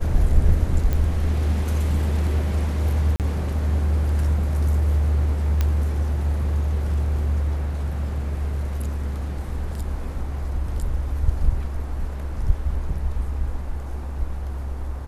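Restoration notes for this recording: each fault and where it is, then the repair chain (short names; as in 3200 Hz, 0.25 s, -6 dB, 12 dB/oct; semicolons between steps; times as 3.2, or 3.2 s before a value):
0.93 pop -12 dBFS
3.16–3.2 gap 38 ms
5.61 pop -9 dBFS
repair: de-click; interpolate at 3.16, 38 ms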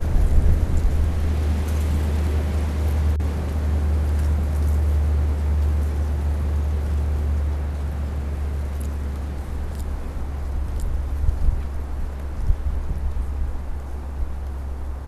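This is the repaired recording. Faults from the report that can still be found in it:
none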